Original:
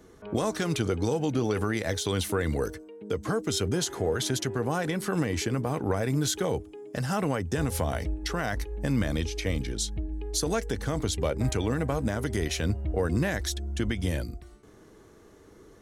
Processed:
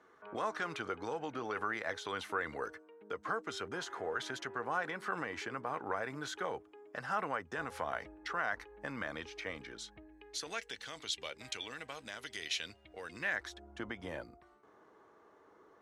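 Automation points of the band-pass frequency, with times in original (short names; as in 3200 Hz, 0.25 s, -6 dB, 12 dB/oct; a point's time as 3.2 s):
band-pass, Q 1.5
9.88 s 1300 Hz
10.8 s 3200 Hz
13.08 s 3200 Hz
13.51 s 990 Hz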